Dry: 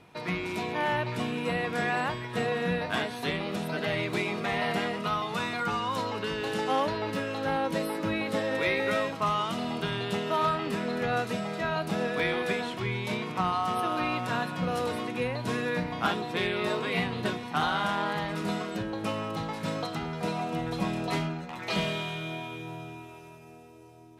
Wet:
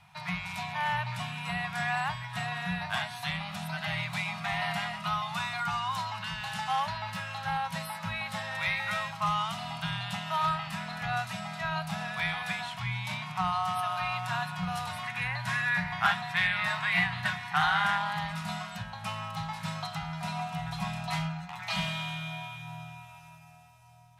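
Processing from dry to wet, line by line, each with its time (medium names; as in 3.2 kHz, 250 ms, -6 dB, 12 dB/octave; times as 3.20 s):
15.03–17.98 s: peaking EQ 1.8 kHz +10 dB 0.69 oct
whole clip: Chebyshev band-stop 170–750 Hz, order 3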